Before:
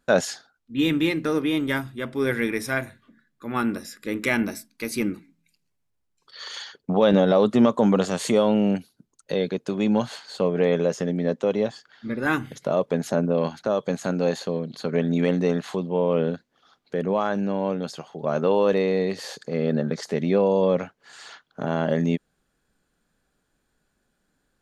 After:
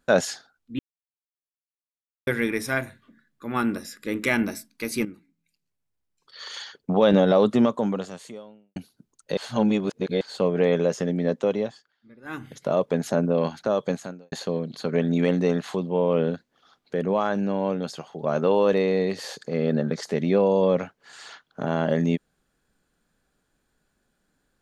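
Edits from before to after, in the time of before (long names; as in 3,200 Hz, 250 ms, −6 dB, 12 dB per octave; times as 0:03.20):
0:00.79–0:02.27: silence
0:05.05–0:06.80: fade in, from −12.5 dB
0:07.48–0:08.76: fade out quadratic
0:09.37–0:10.21: reverse
0:11.46–0:12.71: duck −22 dB, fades 0.48 s
0:13.91–0:14.32: fade out quadratic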